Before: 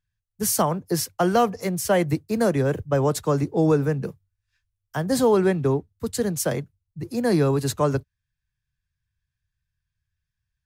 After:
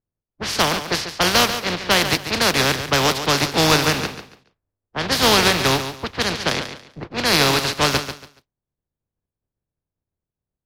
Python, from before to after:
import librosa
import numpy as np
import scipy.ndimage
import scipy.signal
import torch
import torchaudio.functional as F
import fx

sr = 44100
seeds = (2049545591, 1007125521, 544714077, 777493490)

y = fx.spec_flatten(x, sr, power=0.29)
y = fx.env_lowpass(y, sr, base_hz=460.0, full_db=-18.5)
y = fx.high_shelf_res(y, sr, hz=6200.0, db=-9.0, q=1.5)
y = fx.echo_feedback(y, sr, ms=141, feedback_pct=25, wet_db=-10.0)
y = y * 10.0 ** (4.0 / 20.0)